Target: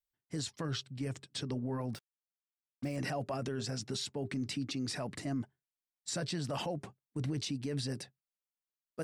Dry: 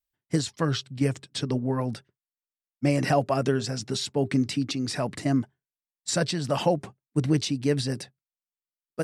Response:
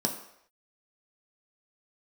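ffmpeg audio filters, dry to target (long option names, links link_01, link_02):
-filter_complex "[0:a]asplit=3[link_01][link_02][link_03];[link_01]afade=type=out:start_time=1.93:duration=0.02[link_04];[link_02]acrusher=bits=6:mix=0:aa=0.5,afade=type=in:start_time=1.93:duration=0.02,afade=type=out:start_time=2.95:duration=0.02[link_05];[link_03]afade=type=in:start_time=2.95:duration=0.02[link_06];[link_04][link_05][link_06]amix=inputs=3:normalize=0,alimiter=limit=-21.5dB:level=0:latency=1:release=19,volume=-6.5dB"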